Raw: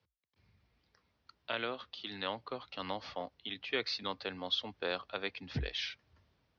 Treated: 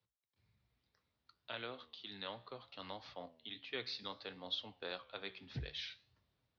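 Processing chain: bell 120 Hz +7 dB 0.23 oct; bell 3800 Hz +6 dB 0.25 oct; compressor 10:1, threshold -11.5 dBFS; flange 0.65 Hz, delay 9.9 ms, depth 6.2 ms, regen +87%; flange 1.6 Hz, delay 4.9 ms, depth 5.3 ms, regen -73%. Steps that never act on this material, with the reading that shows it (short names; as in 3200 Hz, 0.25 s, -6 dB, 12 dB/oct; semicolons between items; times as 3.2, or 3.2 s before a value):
compressor, threshold -11.5 dBFS: input peak -18.0 dBFS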